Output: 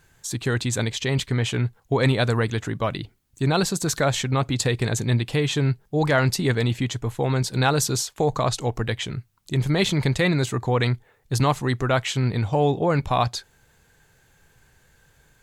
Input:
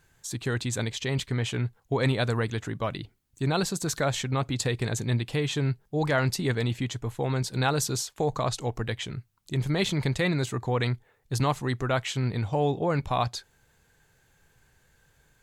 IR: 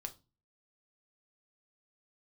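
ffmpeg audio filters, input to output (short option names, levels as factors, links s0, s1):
-af "acontrast=29"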